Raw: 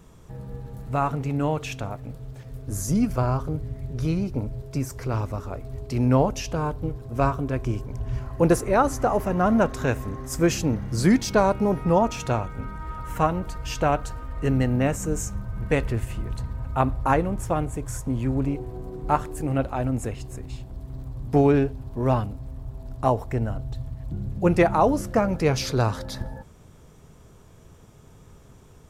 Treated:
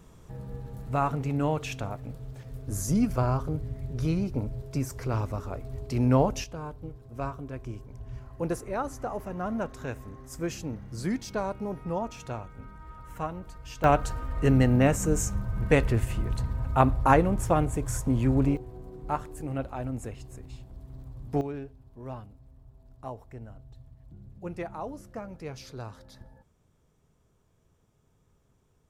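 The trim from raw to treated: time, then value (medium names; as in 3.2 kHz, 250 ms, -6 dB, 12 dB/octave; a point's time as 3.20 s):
-2.5 dB
from 6.44 s -11.5 dB
from 13.84 s +1 dB
from 18.57 s -8 dB
from 21.41 s -17.5 dB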